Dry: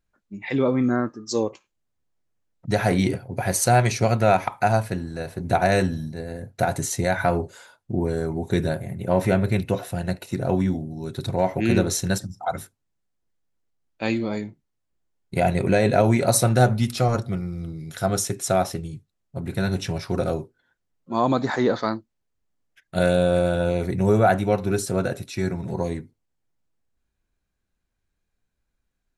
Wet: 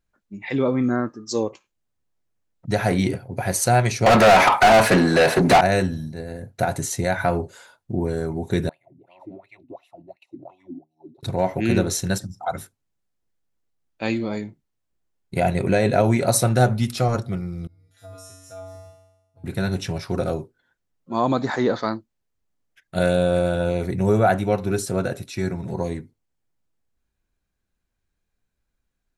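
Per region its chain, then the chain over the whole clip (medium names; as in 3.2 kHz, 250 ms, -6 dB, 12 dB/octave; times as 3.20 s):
4.06–5.61 s: high-pass 130 Hz 24 dB/octave + overdrive pedal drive 34 dB, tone 3.1 kHz, clips at -5.5 dBFS
8.69–11.23 s: wah-wah 2.8 Hz 230–2800 Hz, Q 8.7 + static phaser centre 310 Hz, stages 8
17.67–19.44 s: feedback comb 94 Hz, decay 0.98 s, harmonics odd, mix 100% + compression 2:1, threshold -38 dBFS + short-mantissa float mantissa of 6-bit
whole clip: none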